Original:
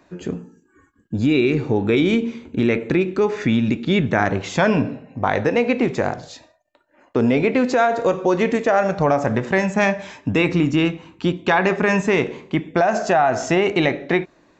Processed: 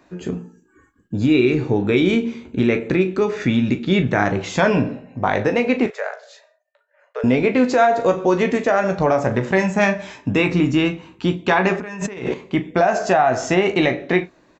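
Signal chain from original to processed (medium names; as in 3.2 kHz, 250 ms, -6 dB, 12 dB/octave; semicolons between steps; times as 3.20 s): 5.86–7.24 s: rippled Chebyshev high-pass 420 Hz, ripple 9 dB; early reflections 16 ms -9 dB, 39 ms -12.5 dB; 11.80–12.34 s: compressor with a negative ratio -28 dBFS, ratio -1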